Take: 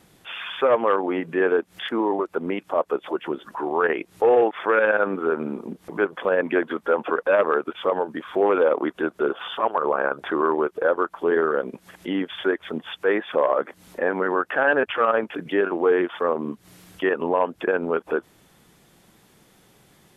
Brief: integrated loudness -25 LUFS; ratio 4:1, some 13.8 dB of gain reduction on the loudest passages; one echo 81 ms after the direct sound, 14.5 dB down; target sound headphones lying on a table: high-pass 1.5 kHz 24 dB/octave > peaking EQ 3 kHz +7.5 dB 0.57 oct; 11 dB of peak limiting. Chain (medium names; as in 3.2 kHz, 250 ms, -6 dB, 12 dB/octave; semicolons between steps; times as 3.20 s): compression 4:1, threshold -32 dBFS; peak limiter -28 dBFS; high-pass 1.5 kHz 24 dB/octave; peaking EQ 3 kHz +7.5 dB 0.57 oct; delay 81 ms -14.5 dB; trim +16.5 dB